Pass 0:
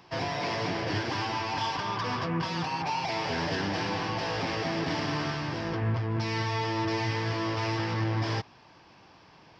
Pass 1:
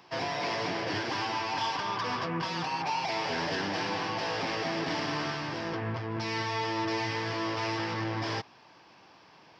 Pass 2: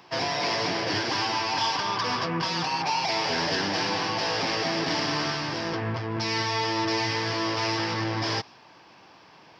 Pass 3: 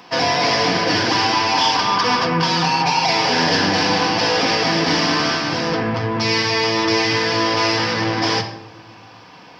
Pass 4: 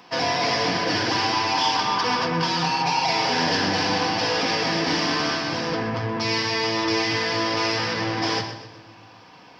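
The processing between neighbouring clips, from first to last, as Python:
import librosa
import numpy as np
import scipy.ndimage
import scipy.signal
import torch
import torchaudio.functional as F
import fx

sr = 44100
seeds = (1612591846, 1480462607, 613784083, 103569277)

y1 = fx.highpass(x, sr, hz=250.0, slope=6)
y2 = fx.dynamic_eq(y1, sr, hz=5100.0, q=1.4, threshold_db=-53.0, ratio=4.0, max_db=6)
y2 = y2 * librosa.db_to_amplitude(4.0)
y3 = fx.room_shoebox(y2, sr, seeds[0], volume_m3=3100.0, walls='furnished', distance_m=1.9)
y3 = y3 * librosa.db_to_amplitude(8.0)
y4 = fx.echo_feedback(y3, sr, ms=124, feedback_pct=44, wet_db=-12.5)
y4 = y4 * librosa.db_to_amplitude(-5.5)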